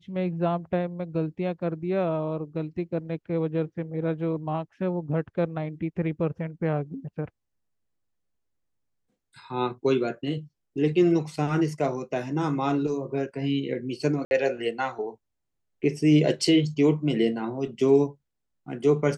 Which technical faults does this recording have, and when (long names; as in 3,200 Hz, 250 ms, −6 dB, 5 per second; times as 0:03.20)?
0:14.25–0:14.31: drop-out 61 ms